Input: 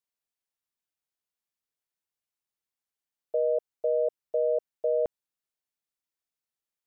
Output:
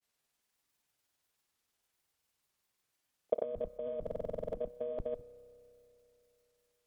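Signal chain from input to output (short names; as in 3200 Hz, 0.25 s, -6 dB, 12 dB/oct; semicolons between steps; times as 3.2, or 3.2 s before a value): octaver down 1 oct, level -6 dB; added harmonics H 4 -30 dB, 6 -31 dB, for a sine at -18 dBFS; grains 0.1 s, grains 20/s, pitch spread up and down by 0 st; negative-ratio compressor -38 dBFS, ratio -1; spring tank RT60 3.3 s, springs 31 ms, chirp 80 ms, DRR 17 dB; stuck buffer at 4.02, samples 2048, times 10; gain +1.5 dB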